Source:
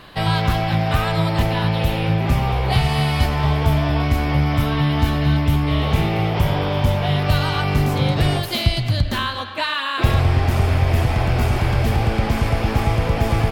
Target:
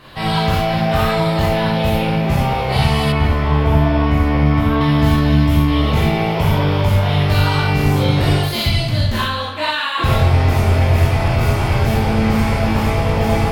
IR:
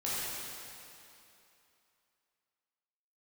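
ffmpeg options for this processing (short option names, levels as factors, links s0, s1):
-filter_complex "[1:a]atrim=start_sample=2205,afade=t=out:st=0.17:d=0.01,atrim=end_sample=7938,asetrate=48510,aresample=44100[s0];[0:a][s0]afir=irnorm=-1:irlink=0,asettb=1/sr,asplit=3[s1][s2][s3];[s1]atrim=end=3.124[s4];[s2]atrim=start=3.12:end=4.81,asetpts=PTS-STARTPTS,afade=t=in:d=0.004:c=qsin,afade=t=out:st=1.686:d=0.004:c=qsin,acrossover=split=2900[s5][s6];[s6]acompressor=threshold=0.00631:ratio=4:attack=1:release=60[s7];[s5][s7]amix=inputs=2:normalize=0[s8];[s3]atrim=start=4.806[s9];[s4][s8]acrossfade=d=0.004:c1=hsin:c2=qsin[s10];[s10][s9]acrossfade=d=0.004:c1=qsin:c2=hsin,volume=1.12"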